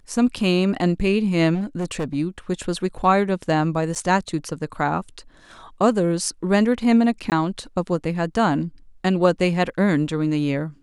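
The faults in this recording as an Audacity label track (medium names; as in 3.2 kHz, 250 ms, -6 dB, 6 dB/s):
1.540000	2.150000	clipped -21 dBFS
3.950000	3.960000	dropout 7.5 ms
7.300000	7.320000	dropout 18 ms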